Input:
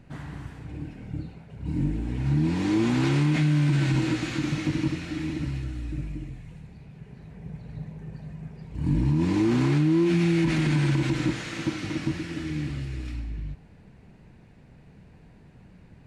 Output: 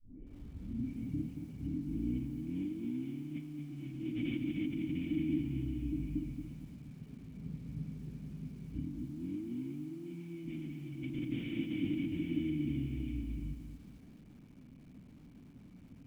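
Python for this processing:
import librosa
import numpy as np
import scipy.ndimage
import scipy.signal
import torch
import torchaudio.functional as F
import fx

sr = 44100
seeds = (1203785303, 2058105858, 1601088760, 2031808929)

y = fx.tape_start_head(x, sr, length_s=1.0)
y = fx.over_compress(y, sr, threshold_db=-31.0, ratio=-1.0)
y = fx.formant_cascade(y, sr, vowel='i')
y = fx.echo_crushed(y, sr, ms=227, feedback_pct=35, bits=10, wet_db=-8.0)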